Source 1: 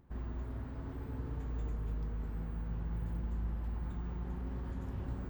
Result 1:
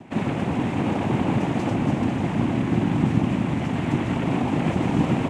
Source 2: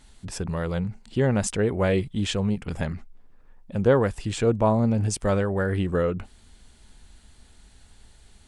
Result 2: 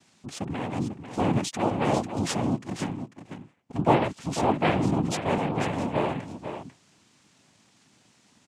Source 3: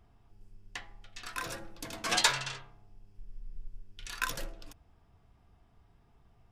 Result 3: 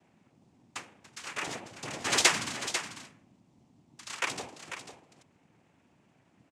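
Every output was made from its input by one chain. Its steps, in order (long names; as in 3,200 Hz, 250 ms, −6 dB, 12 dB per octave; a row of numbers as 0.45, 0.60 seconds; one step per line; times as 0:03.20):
cochlear-implant simulation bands 4
on a send: single-tap delay 495 ms −9.5 dB
on the sum: normalise the peak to −6 dBFS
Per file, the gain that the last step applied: +22.5, −2.0, +3.0 decibels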